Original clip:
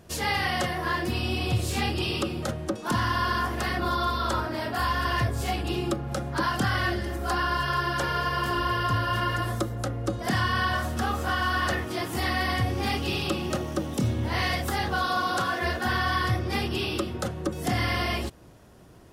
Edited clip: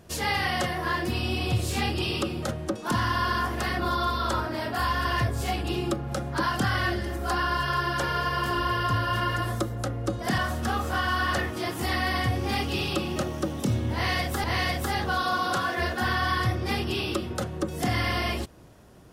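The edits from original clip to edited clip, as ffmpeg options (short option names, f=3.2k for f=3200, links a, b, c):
-filter_complex "[0:a]asplit=3[a][b][c];[a]atrim=end=10.382[d];[b]atrim=start=10.718:end=14.782[e];[c]atrim=start=14.278[f];[d][e]acrossfade=d=0.004:c1=hsin:c2=hsin[g];[g][f]acrossfade=d=0.004:c1=hsin:c2=hsin"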